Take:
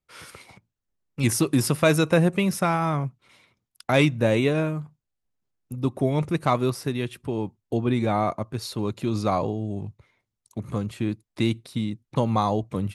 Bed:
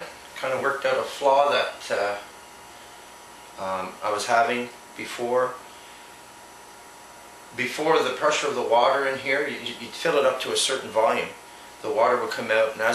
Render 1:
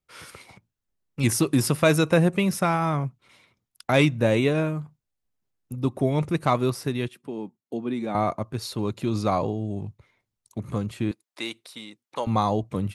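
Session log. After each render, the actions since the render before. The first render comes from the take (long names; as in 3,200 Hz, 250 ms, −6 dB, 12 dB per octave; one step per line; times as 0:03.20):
0:07.08–0:08.15: four-pole ladder high-pass 160 Hz, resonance 30%
0:11.11–0:12.27: high-pass filter 590 Hz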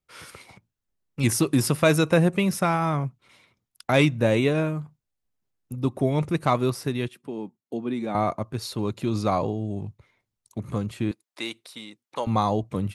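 no processing that can be heard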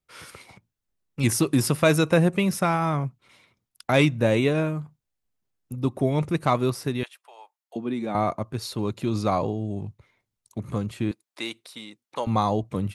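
0:07.03–0:07.76: Butterworth high-pass 650 Hz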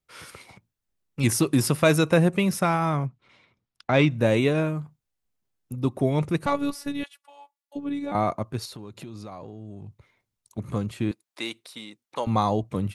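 0:03.06–0:04.11: high-frequency loss of the air 120 metres
0:06.46–0:08.12: phases set to zero 284 Hz
0:08.65–0:10.58: downward compressor 5 to 1, threshold −37 dBFS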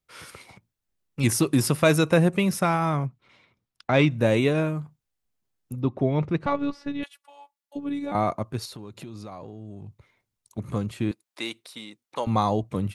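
0:05.81–0:07.03: high-frequency loss of the air 190 metres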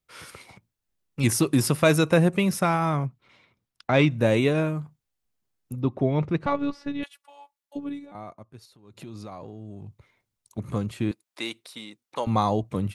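0:07.80–0:09.09: duck −16 dB, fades 0.27 s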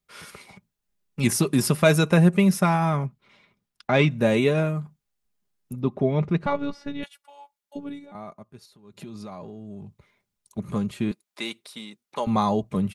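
parametric band 180 Hz +3.5 dB 0.35 octaves
comb filter 4.9 ms, depth 41%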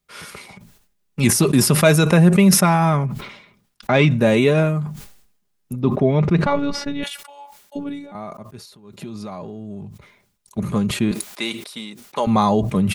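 in parallel at 0 dB: brickwall limiter −13 dBFS, peak gain reduction 7 dB
on the sum: level that may fall only so fast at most 75 dB per second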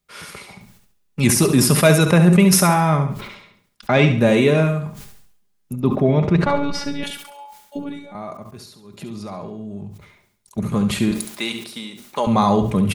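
repeating echo 69 ms, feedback 39%, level −9 dB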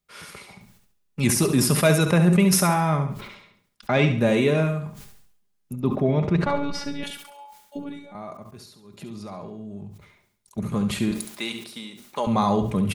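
level −5 dB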